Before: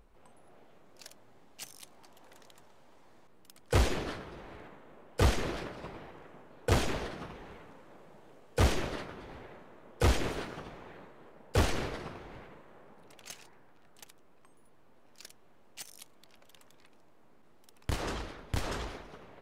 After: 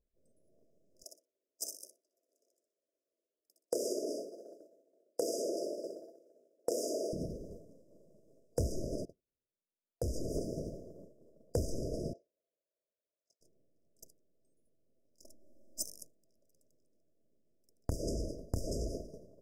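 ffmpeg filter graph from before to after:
-filter_complex "[0:a]asettb=1/sr,asplit=3[a][b][c];[a]atrim=end=1.034[d];[b]atrim=start=1.03:end=7.13,asetpts=PTS-STARTPTS,afade=t=in:d=0.004:c=qsin,afade=t=out:st=6.096:d=0.004:c=qsin,highpass=f=340:w=0.5412,highpass=f=340:w=1.3066,aecho=1:1:62|124|186|248:0.562|0.18|0.0576|0.0184,atrim=end_sample=269010[e];[c]atrim=start=7.126[f];[d][e]acrossfade=d=0.004:c1=hsin:c2=qsin[g];[g][f]acrossfade=d=0.004:c1=qsin:c2=hsin,asettb=1/sr,asplit=3[h][i][j];[h]atrim=end=9.054[k];[i]atrim=start=9.05:end=10.35,asetpts=PTS-STARTPTS,afade=t=in:d=0.004:c=qsin,afade=t=out:st=1.296:d=0.004:c=qsin,agate=range=-24dB:threshold=-43dB:ratio=16:release=100:detection=peak,acompressor=threshold=-39dB:ratio=3:attack=3.2:release=140:knee=1:detection=peak[l];[j]atrim=start=10.346[m];[k][l]acrossfade=d=0.004:c1=hsin:c2=qsin[n];[n][m]acrossfade=d=0.004:c1=qsin:c2=hsin,asettb=1/sr,asplit=3[o][p][q];[o]atrim=end=12.134[r];[p]atrim=start=12.13:end=13.41,asetpts=PTS-STARTPTS,afade=t=in:d=0.004:c=qsin,afade=t=out:st=1.276:d=0.004:c=qsin,highpass=940,adynamicsmooth=sensitivity=7.5:basefreq=2.3k[s];[q]atrim=start=13.406[t];[r][s]acrossfade=d=0.004:c1=hsin:c2=qsin[u];[u][t]acrossfade=d=0.004:c1=qsin:c2=hsin,asettb=1/sr,asplit=3[v][w][x];[v]atrim=end=15.244[y];[w]atrim=start=15.24:end=15.84,asetpts=PTS-STARTPTS,afade=t=in:d=0.004:c=qsin,afade=t=out:st=0.596:d=0.004:c=qsin,aecho=1:1:3.4:0.95,atrim=end_sample=26460,adynamicequalizer=threshold=0.00112:dfrequency=2100:dqfactor=0.7:tfrequency=2100:tqfactor=0.7:attack=5:release=100:ratio=0.375:range=2.5:mode=cutabove:tftype=highshelf[z];[x]atrim=start=15.836[aa];[y][z]acrossfade=d=0.004:c1=hsin:c2=qsin[ab];[ab][aa]acrossfade=d=0.004:c1=qsin:c2=hsin,afftfilt=real='re*(1-between(b*sr/4096,680,4800))':imag='im*(1-between(b*sr/4096,680,4800))':win_size=4096:overlap=0.75,agate=range=-33dB:threshold=-44dB:ratio=3:detection=peak,acompressor=threshold=-39dB:ratio=6,volume=7.5dB"

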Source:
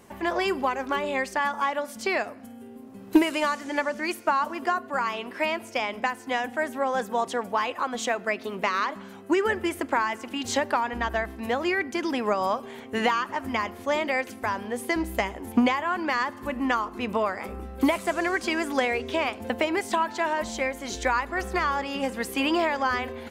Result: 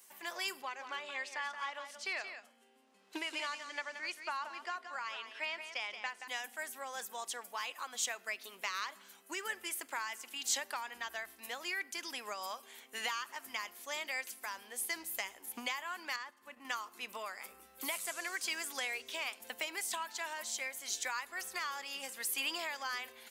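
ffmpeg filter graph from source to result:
-filter_complex "[0:a]asettb=1/sr,asplit=3[a][b][c];[a]atrim=end=0.624[d];[b]atrim=start=0.62:end=6.28,asetpts=PTS-STARTPTS,afade=t=in:d=0.004:c=qsin,afade=t=out:st=5.656:d=0.004:c=qsin,highpass=200,lowpass=4.4k,aecho=1:1:176:0.355,atrim=end_sample=249606[e];[c]atrim=start=6.276[f];[d][e]acrossfade=d=0.004:c1=hsin:c2=qsin[g];[g][f]acrossfade=d=0.004:c1=qsin:c2=hsin,asettb=1/sr,asplit=3[h][i][j];[h]atrim=end=16.164[k];[i]atrim=start=16.16:end=16.65,asetpts=PTS-STARTPTS,afade=t=in:d=0.004:c=qsin,afade=t=out:st=0.486:d=0.004:c=qsin,lowpass=f=2.8k:p=1,agate=range=-7dB:threshold=-34dB:ratio=16:release=100:detection=peak,acompressor=threshold=-33dB:ratio=1.5:attack=3.2:release=140:knee=1:detection=peak[l];[j]atrim=start=16.646[m];[k][l]acrossfade=d=0.004:c1=hsin:c2=qsin[n];[n][m]acrossfade=d=0.004:c1=qsin:c2=hsin,aderivative,bandreject=f=50:t=h:w=6,bandreject=f=100:t=h:w=6,volume=1dB"

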